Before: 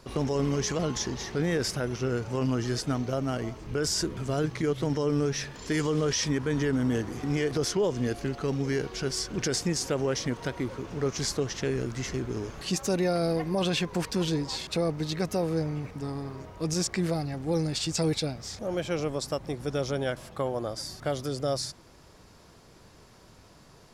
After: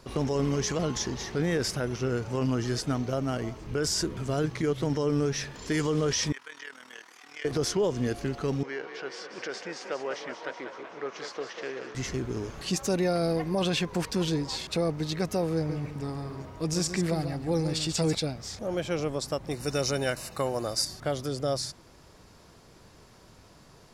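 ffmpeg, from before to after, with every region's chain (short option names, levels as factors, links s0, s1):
-filter_complex "[0:a]asettb=1/sr,asplit=3[s0][s1][s2];[s0]atrim=end=6.324[s3];[s1]atrim=start=6.32:end=7.45,asetpts=PTS-STARTPTS,afade=t=in:d=0.004:c=qsin,afade=t=out:st=1.126:d=0.004:c=qsin,acrossover=split=5000[s4][s5];[s5]acompressor=threshold=0.002:ratio=4:attack=1:release=60[s6];[s4][s6]amix=inputs=2:normalize=0,highpass=1400,tremolo=f=39:d=0.75[s7];[s2]atrim=start=7.446[s8];[s3][s7]acrossfade=d=0.004:c1=hsin:c2=qsin[s9];[s9][s8]acrossfade=d=0.004:c1=qsin:c2=hsin,asettb=1/sr,asplit=3[s10][s11][s12];[s10]atrim=end=8.634[s13];[s11]atrim=start=8.63:end=11.95,asetpts=PTS-STARTPTS,afade=t=in:d=0.004:c=qsin,afade=t=out:st=3.316:d=0.004:c=qsin,highpass=570,lowpass=2700,asplit=9[s14][s15][s16][s17][s18][s19][s20][s21][s22];[s15]adelay=189,afreqshift=31,volume=0.376[s23];[s16]adelay=378,afreqshift=62,volume=0.237[s24];[s17]adelay=567,afreqshift=93,volume=0.15[s25];[s18]adelay=756,afreqshift=124,volume=0.0944[s26];[s19]adelay=945,afreqshift=155,volume=0.0589[s27];[s20]adelay=1134,afreqshift=186,volume=0.0372[s28];[s21]adelay=1323,afreqshift=217,volume=0.0234[s29];[s22]adelay=1512,afreqshift=248,volume=0.0148[s30];[s14][s23][s24][s25][s26][s27][s28][s29][s30]amix=inputs=9:normalize=0,atrim=end_sample=146412[s31];[s12]atrim=start=11.946[s32];[s13][s31]acrossfade=d=0.004:c1=hsin:c2=qsin[s33];[s33][s32]acrossfade=d=0.004:c1=qsin:c2=hsin,asettb=1/sr,asplit=3[s34][s35][s36];[s34]atrim=end=15.554[s37];[s35]atrim=start=15.55:end=18.15,asetpts=PTS-STARTPTS,afade=t=in:d=0.004:c=qsin,afade=t=out:st=2.596:d=0.004:c=qsin,bandreject=f=6300:w=25,aecho=1:1:142:0.355,atrim=end_sample=114660[s38];[s36]atrim=start=18.146[s39];[s37][s38]acrossfade=d=0.004:c1=hsin:c2=qsin[s40];[s40][s39]acrossfade=d=0.004:c1=qsin:c2=hsin,asettb=1/sr,asplit=3[s41][s42][s43];[s41]atrim=end=19.514[s44];[s42]atrim=start=19.51:end=20.85,asetpts=PTS-STARTPTS,afade=t=in:d=0.004:c=qsin,afade=t=out:st=1.336:d=0.004:c=qsin,asuperstop=centerf=3300:order=20:qfactor=6.9,highshelf=f=2400:g=12[s45];[s43]atrim=start=20.846[s46];[s44][s45]acrossfade=d=0.004:c1=hsin:c2=qsin[s47];[s47][s46]acrossfade=d=0.004:c1=qsin:c2=hsin"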